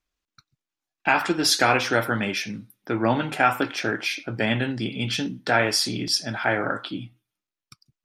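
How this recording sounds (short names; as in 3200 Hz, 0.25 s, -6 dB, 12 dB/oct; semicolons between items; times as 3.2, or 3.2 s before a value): noise floor -90 dBFS; spectral tilt -3.5 dB/oct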